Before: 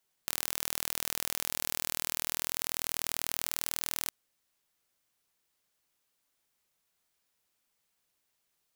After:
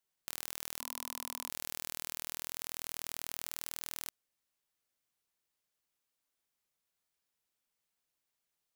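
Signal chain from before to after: 0.80–1.49 s: graphic EQ with 31 bands 250 Hz +8 dB, 1 kHz +10 dB, 1.6 kHz -4 dB; trim -7.5 dB

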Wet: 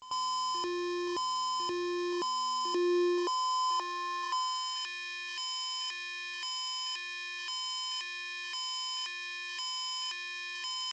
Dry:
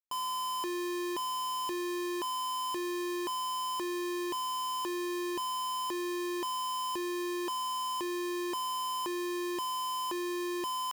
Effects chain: peaking EQ 81 Hz +2.5 dB 0.81 oct; on a send: reverse echo 93 ms -13.5 dB; on the sum: dynamic bell 5.2 kHz, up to +8 dB, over -60 dBFS, Q 2.8; high-pass sweep 63 Hz -> 2.1 kHz, 1.24–4.89 s; G.722 64 kbps 16 kHz

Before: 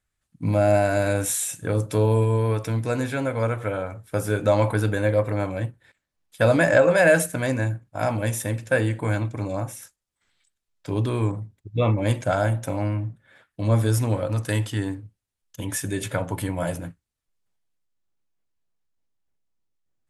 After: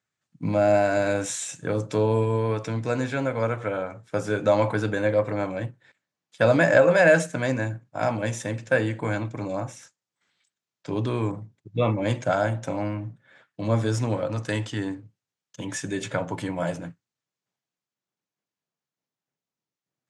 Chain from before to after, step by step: Chebyshev band-pass 130–6900 Hz, order 3

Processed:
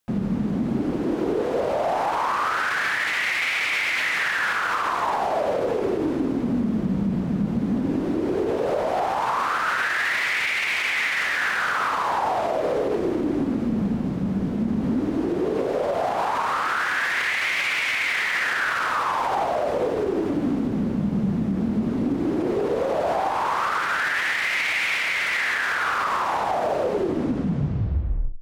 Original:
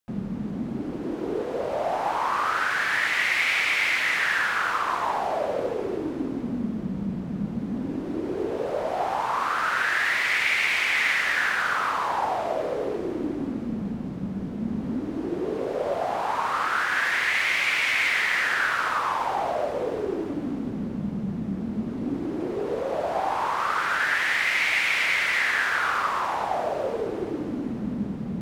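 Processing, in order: tape stop on the ending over 1.63 s; peak limiter -22.5 dBFS, peak gain reduction 11 dB; trim +7 dB

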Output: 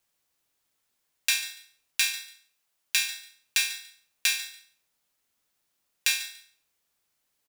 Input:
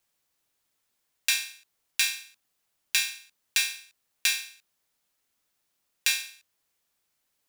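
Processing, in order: 2.16–3.01 s: bass shelf 430 Hz -7 dB; on a send: feedback delay 144 ms, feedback 20%, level -15.5 dB

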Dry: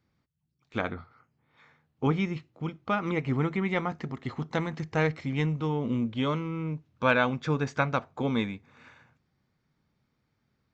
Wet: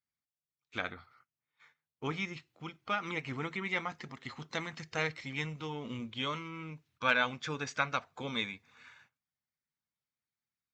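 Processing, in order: coarse spectral quantiser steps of 15 dB; gate -59 dBFS, range -16 dB; tilt shelf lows -8.5 dB, about 1.1 kHz; trim -4.5 dB

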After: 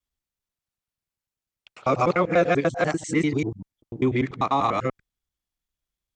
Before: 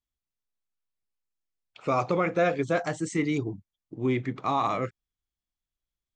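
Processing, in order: time reversed locally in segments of 98 ms; Chebyshev shaper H 7 -37 dB, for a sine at -14 dBFS; trim +4.5 dB

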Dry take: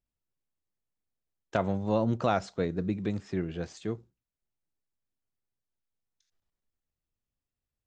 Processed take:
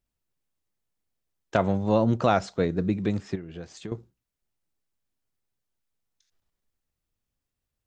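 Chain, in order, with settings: 3.35–3.92 s: compression 16:1, threshold -39 dBFS, peak gain reduction 14 dB; trim +5 dB

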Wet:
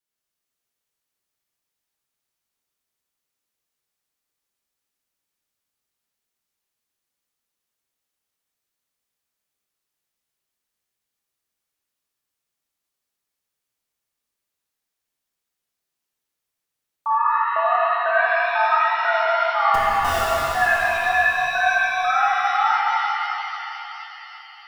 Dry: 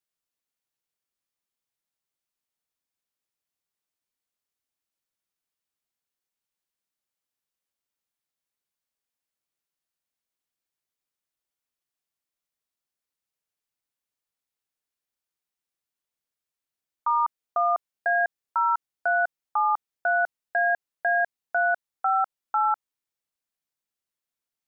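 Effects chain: wow and flutter 110 cents; 19.74–20.21 s: Schmitt trigger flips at -26 dBFS; pitch-shifted reverb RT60 3.6 s, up +7 st, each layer -8 dB, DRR -7 dB; trim -1.5 dB

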